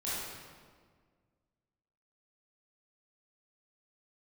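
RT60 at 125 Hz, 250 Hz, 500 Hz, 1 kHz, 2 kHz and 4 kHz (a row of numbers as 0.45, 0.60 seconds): 2.2, 2.1, 1.8, 1.6, 1.4, 1.2 seconds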